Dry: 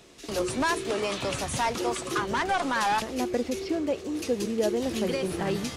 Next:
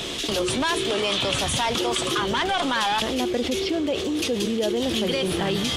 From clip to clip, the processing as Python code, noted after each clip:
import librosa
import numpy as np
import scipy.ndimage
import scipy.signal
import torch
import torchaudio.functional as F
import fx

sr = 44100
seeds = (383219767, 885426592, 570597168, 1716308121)

y = fx.peak_eq(x, sr, hz=3300.0, db=12.0, octaves=0.47)
y = fx.env_flatten(y, sr, amount_pct=70)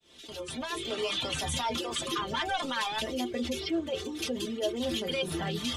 y = fx.fade_in_head(x, sr, length_s=1.05)
y = fx.dereverb_blind(y, sr, rt60_s=0.79)
y = fx.stiff_resonator(y, sr, f0_hz=78.0, decay_s=0.2, stiffness=0.008)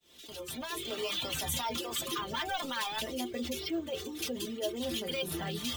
y = fx.high_shelf(x, sr, hz=7800.0, db=10.5)
y = np.repeat(y[::2], 2)[:len(y)]
y = y * 10.0 ** (-4.0 / 20.0)